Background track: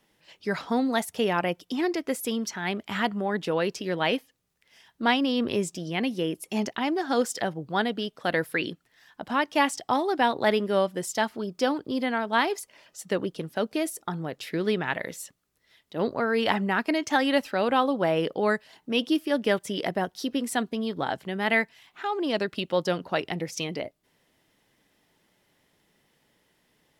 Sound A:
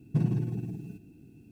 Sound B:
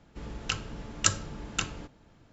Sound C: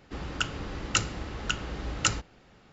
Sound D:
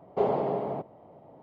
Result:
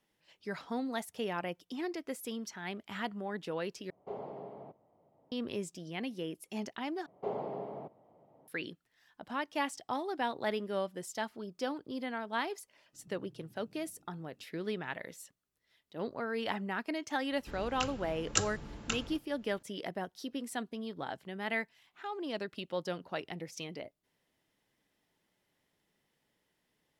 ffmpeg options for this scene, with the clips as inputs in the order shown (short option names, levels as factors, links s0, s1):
-filter_complex "[4:a]asplit=2[s0][s1];[0:a]volume=0.282[s2];[s1]highpass=93[s3];[1:a]acompressor=threshold=0.00891:ratio=6:attack=3.2:release=140:knee=1:detection=peak[s4];[s2]asplit=3[s5][s6][s7];[s5]atrim=end=3.904[s8];[s0]atrim=end=1.42,asetpts=PTS-STARTPTS,volume=0.15[s9];[s6]atrim=start=5.316:end=7.064[s10];[s3]atrim=end=1.42,asetpts=PTS-STARTPTS,volume=0.282[s11];[s7]atrim=start=8.476[s12];[s4]atrim=end=1.51,asetpts=PTS-STARTPTS,volume=0.15,afade=t=in:d=0.004:c=hsin,afade=t=out:st=1.506:d=0.004:c=hsin,adelay=12930[s13];[2:a]atrim=end=2.32,asetpts=PTS-STARTPTS,volume=0.531,afade=t=in:d=0.004:c=hsin,afade=t=out:st=2.316:d=0.004:c=hsin,adelay=17310[s14];[s8][s9]acrossfade=d=0.004:c1=hsin:c2=hsin[s15];[s15][s10]acrossfade=d=0.004:c1=hsin:c2=hsin[s16];[s16][s11]acrossfade=d=0.004:c1=hsin:c2=hsin[s17];[s17][s12]acrossfade=d=0.004:c1=hsin:c2=hsin[s18];[s18][s13][s14]amix=inputs=3:normalize=0"